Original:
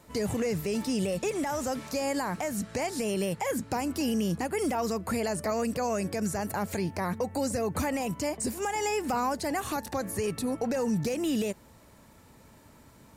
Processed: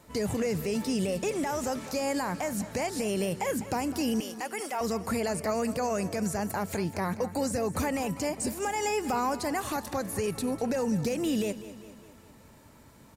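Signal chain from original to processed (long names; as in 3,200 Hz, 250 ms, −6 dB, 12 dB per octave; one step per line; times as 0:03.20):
0:04.20–0:04.81: high-pass filter 650 Hz 12 dB per octave
repeating echo 200 ms, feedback 55%, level −15 dB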